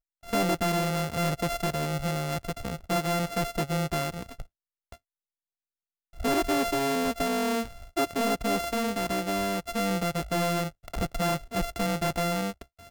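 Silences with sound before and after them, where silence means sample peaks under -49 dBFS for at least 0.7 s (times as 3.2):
4.96–6.13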